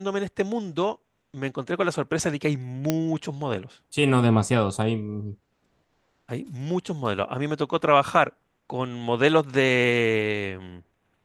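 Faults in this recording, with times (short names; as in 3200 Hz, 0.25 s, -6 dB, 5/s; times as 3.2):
2.9 pop -8 dBFS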